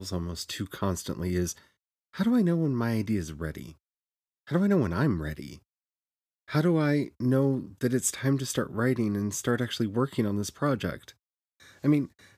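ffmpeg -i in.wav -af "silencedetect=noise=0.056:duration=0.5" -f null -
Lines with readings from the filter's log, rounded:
silence_start: 1.51
silence_end: 2.20 | silence_duration: 0.69
silence_start: 3.50
silence_end: 4.51 | silence_duration: 1.01
silence_start: 5.33
silence_end: 6.55 | silence_duration: 1.22
silence_start: 10.94
silence_end: 11.84 | silence_duration: 0.90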